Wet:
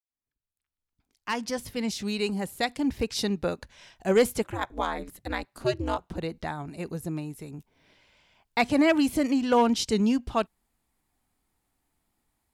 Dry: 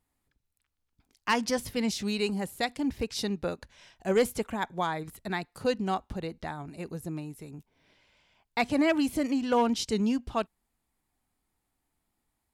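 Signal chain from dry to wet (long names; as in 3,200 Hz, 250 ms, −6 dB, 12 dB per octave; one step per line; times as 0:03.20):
fade in at the beginning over 3.04 s
0:04.43–0:06.18: ring modulation 120 Hz
level +3.5 dB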